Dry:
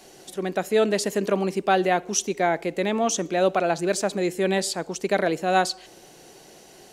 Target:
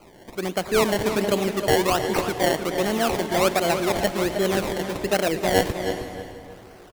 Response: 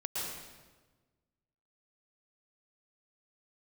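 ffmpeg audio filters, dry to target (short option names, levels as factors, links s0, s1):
-filter_complex "[0:a]acrusher=samples=24:mix=1:aa=0.000001:lfo=1:lforange=24:lforate=1.3,asplit=2[s0][s1];[s1]adelay=315,lowpass=f=4600:p=1,volume=0.355,asplit=2[s2][s3];[s3]adelay=315,lowpass=f=4600:p=1,volume=0.26,asplit=2[s4][s5];[s5]adelay=315,lowpass=f=4600:p=1,volume=0.26[s6];[s0][s2][s4][s6]amix=inputs=4:normalize=0,asplit=2[s7][s8];[1:a]atrim=start_sample=2205,asetrate=29106,aresample=44100,adelay=113[s9];[s8][s9]afir=irnorm=-1:irlink=0,volume=0.141[s10];[s7][s10]amix=inputs=2:normalize=0"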